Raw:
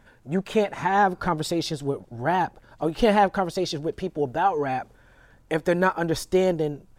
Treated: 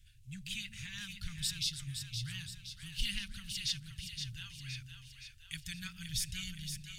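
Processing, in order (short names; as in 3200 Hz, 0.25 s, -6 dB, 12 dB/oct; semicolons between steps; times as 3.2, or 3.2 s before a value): elliptic band-stop 110–2800 Hz, stop band 70 dB; bell 9100 Hz +3 dB 0.21 oct; split-band echo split 470 Hz, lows 0.145 s, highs 0.518 s, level -7 dB; gain -1.5 dB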